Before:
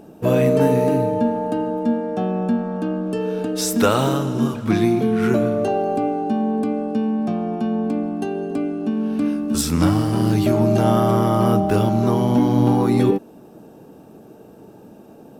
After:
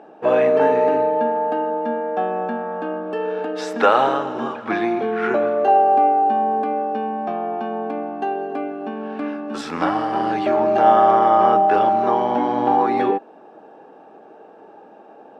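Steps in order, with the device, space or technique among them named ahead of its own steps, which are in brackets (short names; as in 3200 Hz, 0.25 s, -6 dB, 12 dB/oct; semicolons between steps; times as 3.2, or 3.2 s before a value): tin-can telephone (BPF 560–2100 Hz; small resonant body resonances 800/1700 Hz, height 9 dB, ringing for 60 ms); gain +5.5 dB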